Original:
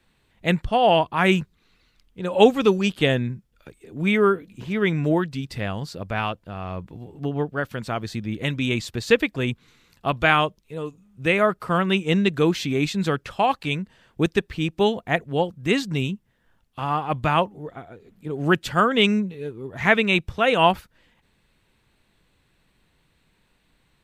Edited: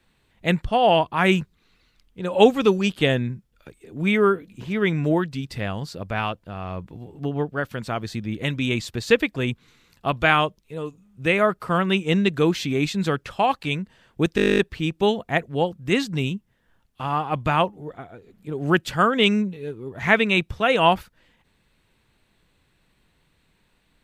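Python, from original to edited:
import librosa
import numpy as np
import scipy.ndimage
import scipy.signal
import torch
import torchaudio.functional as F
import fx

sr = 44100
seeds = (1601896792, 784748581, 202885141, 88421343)

y = fx.edit(x, sr, fx.stutter(start_s=14.36, slice_s=0.02, count=12), tone=tone)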